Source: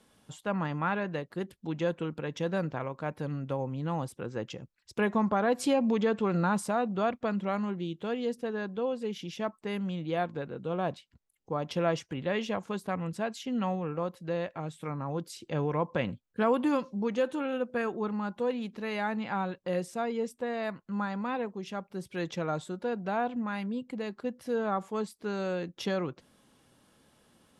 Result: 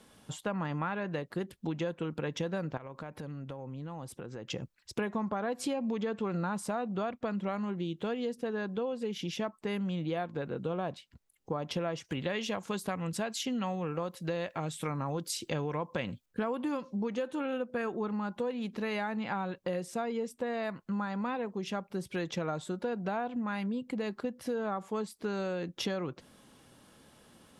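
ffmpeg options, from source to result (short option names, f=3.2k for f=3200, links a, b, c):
-filter_complex "[0:a]asettb=1/sr,asplit=3[a][b][c];[a]atrim=end=2.774[d];[b]atrim=start=2.77:end=4.5,asetpts=PTS-STARTPTS,afade=t=in:d=0.004:c=qsin,afade=t=out:st=1.726:d=0.004:c=qsin,acompressor=threshold=-43dB:ratio=10:attack=3.2:release=140:knee=1:detection=peak[e];[c]atrim=start=4.496[f];[d][e]acrossfade=d=0.004:c1=hsin:c2=qsin[g];[g][f]acrossfade=d=0.004:c1=qsin:c2=hsin,asettb=1/sr,asplit=3[h][i][j];[h]atrim=end=12.044[k];[i]atrim=start=12.04:end=16.26,asetpts=PTS-STARTPTS,afade=t=in:d=0.004:c=qsin,afade=t=out:st=4.216:d=0.004:c=qsin,highshelf=f=2.6k:g=8.5[l];[j]atrim=start=16.256[m];[k][l]acrossfade=d=0.004:c1=hsin:c2=qsin[n];[n][m]acrossfade=d=0.004:c1=qsin:c2=hsin,acompressor=threshold=-36dB:ratio=6,volume=5dB"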